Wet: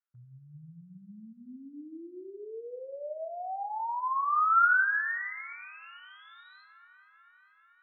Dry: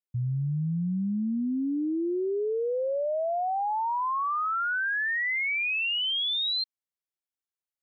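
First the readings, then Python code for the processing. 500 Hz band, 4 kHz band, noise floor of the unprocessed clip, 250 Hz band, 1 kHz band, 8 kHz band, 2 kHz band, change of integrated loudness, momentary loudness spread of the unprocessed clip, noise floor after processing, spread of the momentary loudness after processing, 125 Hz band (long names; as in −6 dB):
−12.0 dB, below −30 dB, below −85 dBFS, −18.5 dB, 0.0 dB, can't be measured, −1.5 dB, −1.0 dB, 4 LU, −63 dBFS, 24 LU, below −20 dB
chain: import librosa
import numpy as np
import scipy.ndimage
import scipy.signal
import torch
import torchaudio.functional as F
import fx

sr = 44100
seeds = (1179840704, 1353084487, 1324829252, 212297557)

y = fx.rider(x, sr, range_db=10, speed_s=0.5)
y = fx.filter_sweep_bandpass(y, sr, from_hz=1400.0, to_hz=440.0, start_s=5.19, end_s=6.03, q=5.3)
y = fx.air_absorb(y, sr, metres=250.0)
y = fx.echo_thinned(y, sr, ms=439, feedback_pct=75, hz=590.0, wet_db=-23)
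y = fx.room_shoebox(y, sr, seeds[0], volume_m3=220.0, walls='mixed', distance_m=0.47)
y = y * 10.0 ** (8.0 / 20.0)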